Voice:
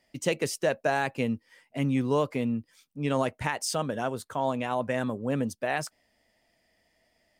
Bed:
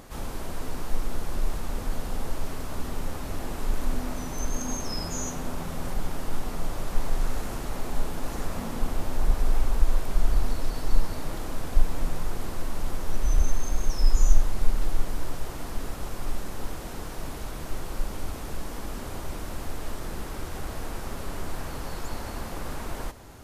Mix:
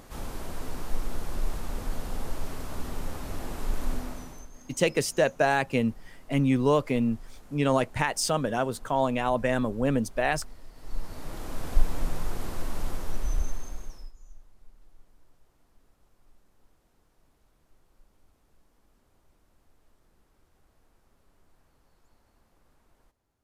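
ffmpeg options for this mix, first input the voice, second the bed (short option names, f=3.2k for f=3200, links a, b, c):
-filter_complex "[0:a]adelay=4550,volume=3dB[a];[1:a]volume=16dB,afade=t=out:st=3.92:d=0.56:silence=0.133352,afade=t=in:st=10.75:d=0.96:silence=0.11885,afade=t=out:st=12.82:d=1.3:silence=0.0316228[b];[a][b]amix=inputs=2:normalize=0"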